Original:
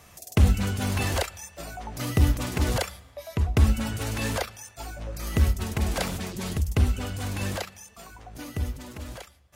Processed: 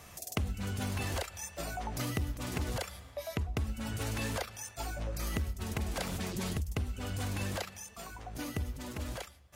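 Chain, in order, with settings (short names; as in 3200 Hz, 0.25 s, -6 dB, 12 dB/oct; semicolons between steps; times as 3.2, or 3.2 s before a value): compressor 6:1, threshold -32 dBFS, peak gain reduction 18 dB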